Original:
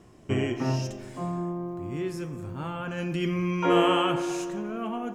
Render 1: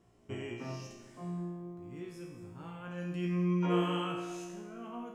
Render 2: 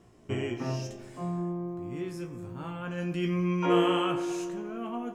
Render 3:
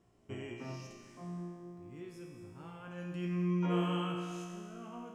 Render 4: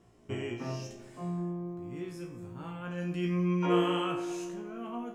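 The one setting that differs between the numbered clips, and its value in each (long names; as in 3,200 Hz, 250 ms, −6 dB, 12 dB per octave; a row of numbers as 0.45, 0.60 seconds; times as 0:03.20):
tuned comb filter, decay: 1, 0.17, 2.1, 0.4 seconds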